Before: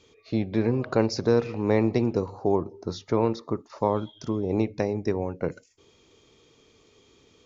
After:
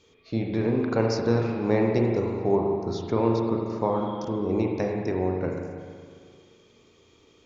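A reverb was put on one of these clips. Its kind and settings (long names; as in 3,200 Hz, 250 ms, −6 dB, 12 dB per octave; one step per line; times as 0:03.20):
spring reverb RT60 2 s, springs 35/43 ms, chirp 70 ms, DRR 0 dB
level −2 dB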